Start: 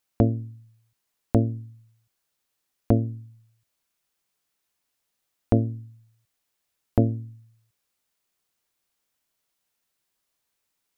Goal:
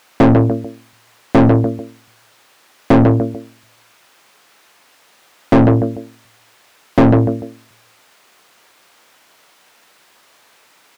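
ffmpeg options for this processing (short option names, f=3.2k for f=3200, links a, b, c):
-filter_complex "[0:a]asplit=2[a][b];[b]adelay=148,lowpass=f=910:p=1,volume=-13.5dB,asplit=2[c][d];[d]adelay=148,lowpass=f=910:p=1,volume=0.28,asplit=2[e][f];[f]adelay=148,lowpass=f=910:p=1,volume=0.28[g];[a][c][e][g]amix=inputs=4:normalize=0,asplit=2[h][i];[i]highpass=f=720:p=1,volume=40dB,asoftclip=type=tanh:threshold=-4.5dB[j];[h][j]amix=inputs=2:normalize=0,lowpass=f=1.6k:p=1,volume=-6dB,volume=3.5dB"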